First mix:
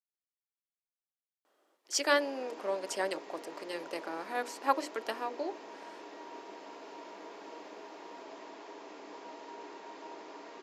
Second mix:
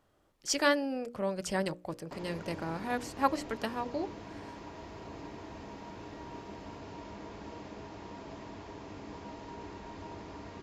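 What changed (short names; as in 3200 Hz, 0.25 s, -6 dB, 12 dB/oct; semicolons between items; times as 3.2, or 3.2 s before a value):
speech: entry -1.45 s; master: remove HPF 330 Hz 24 dB/oct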